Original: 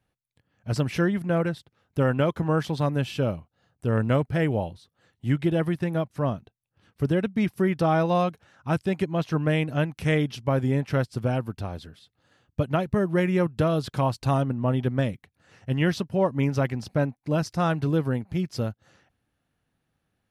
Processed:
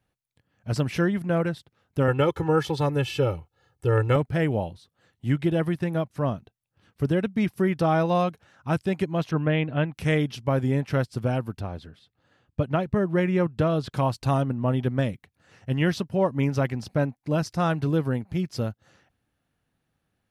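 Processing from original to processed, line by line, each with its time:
2.08–4.16 comb 2.3 ms, depth 91%
9.31–9.93 steep low-pass 3800 Hz 48 dB/oct
11.59–13.9 high shelf 4700 Hz -> 7400 Hz -11 dB

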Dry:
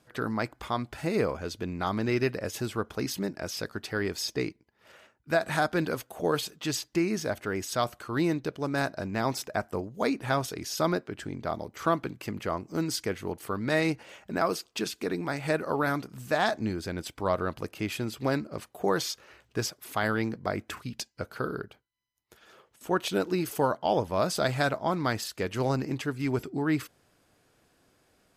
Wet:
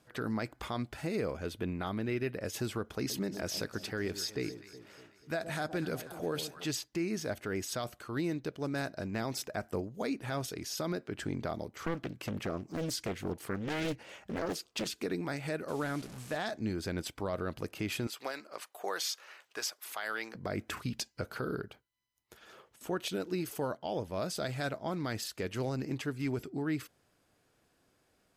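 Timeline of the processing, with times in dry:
1.46–2.41 band shelf 5700 Hz -8.5 dB 1 oct
2.96–6.65 echo with dull and thin repeats by turns 0.122 s, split 970 Hz, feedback 72%, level -13 dB
11.7–14.97 Doppler distortion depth 0.98 ms
15.68–16.37 delta modulation 64 kbps, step -38.5 dBFS
18.07–20.35 HPF 760 Hz
whole clip: dynamic EQ 1000 Hz, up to -6 dB, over -42 dBFS, Q 1.5; vocal rider 0.5 s; limiter -21 dBFS; gain -3.5 dB

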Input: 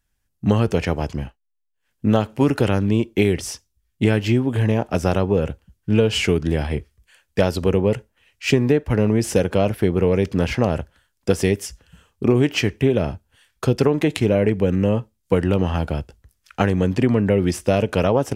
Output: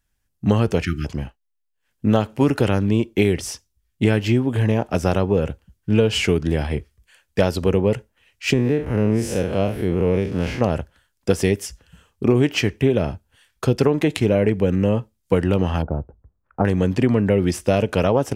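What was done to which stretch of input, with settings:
0.83–1.05 spectral delete 380–1200 Hz
8.53–10.61 time blur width 0.105 s
15.82–16.65 LPF 1100 Hz 24 dB/oct

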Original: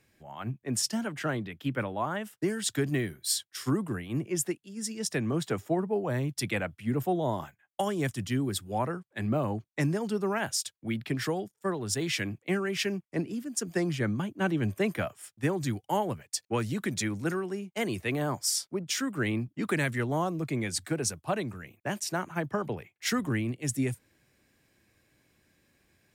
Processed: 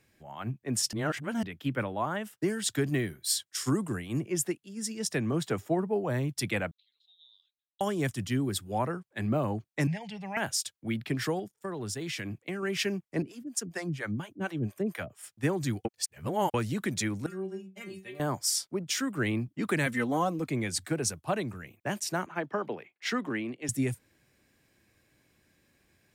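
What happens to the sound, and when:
0.93–1.43 reverse
3.47–4.2 bell 7300 Hz +9.5 dB 0.9 oct
6.71–7.81 Butterworth band-pass 3900 Hz, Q 6.8
9.87–10.37 EQ curve 170 Hz 0 dB, 320 Hz -30 dB, 510 Hz -10 dB, 820 Hz +1 dB, 1300 Hz -23 dB, 2000 Hz +10 dB, 12000 Hz -19 dB
11.39–12.63 compressor 5:1, threshold -32 dBFS
13.22–15.23 harmonic tremolo 4.3 Hz, depth 100%, crossover 520 Hz
15.85–16.54 reverse
17.26–18.2 metallic resonator 190 Hz, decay 0.25 s, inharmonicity 0.002
19.86–20.49 comb 3.9 ms
22.26–23.69 three-band isolator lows -23 dB, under 200 Hz, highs -16 dB, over 5100 Hz

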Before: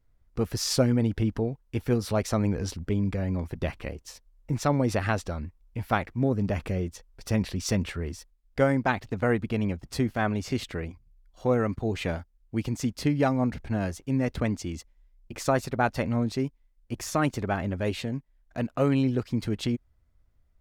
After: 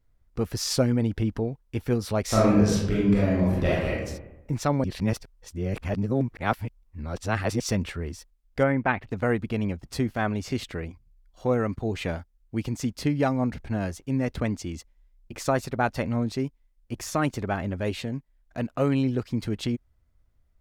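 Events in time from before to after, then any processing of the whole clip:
2.23–4.04 reverb throw, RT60 0.94 s, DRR -7.5 dB
4.84–7.6 reverse
8.63–9.08 resonant high shelf 3600 Hz -13.5 dB, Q 1.5

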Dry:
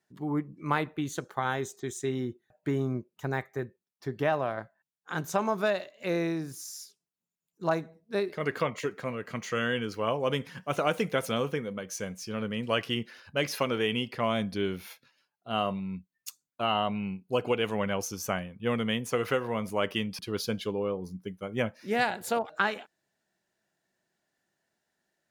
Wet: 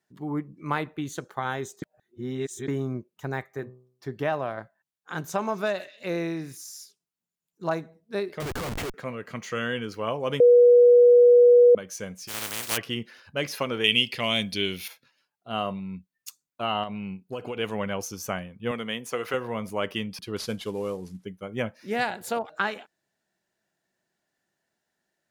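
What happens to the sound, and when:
1.82–2.68 reverse
3.44–4.08 de-hum 63.2 Hz, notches 19
5.23–6.57 delay with a stepping band-pass 0.131 s, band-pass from 2500 Hz, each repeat 0.7 oct, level -11 dB
8.4–8.94 Schmitt trigger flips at -38 dBFS
10.4–11.75 bleep 485 Hz -11 dBFS
12.27–12.76 spectral contrast lowered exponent 0.14
13.84–14.88 resonant high shelf 1900 Hz +10.5 dB, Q 1.5
16.83–17.57 compressor, threshold -29 dBFS
18.71–19.34 HPF 340 Hz 6 dB/oct
20.36–21.25 CVSD 64 kbps

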